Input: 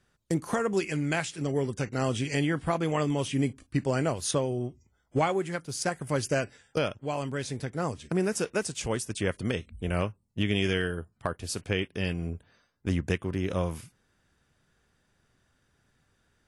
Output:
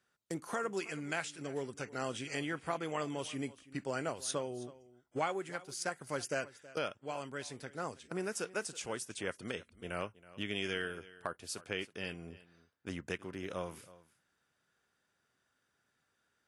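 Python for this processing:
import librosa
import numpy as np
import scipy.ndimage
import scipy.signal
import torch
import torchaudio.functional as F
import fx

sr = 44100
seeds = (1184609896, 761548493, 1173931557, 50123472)

y = fx.highpass(x, sr, hz=400.0, slope=6)
y = fx.peak_eq(y, sr, hz=1400.0, db=4.0, octaves=0.26)
y = y + 10.0 ** (-19.0 / 20.0) * np.pad(y, (int(323 * sr / 1000.0), 0))[:len(y)]
y = y * 10.0 ** (-7.0 / 20.0)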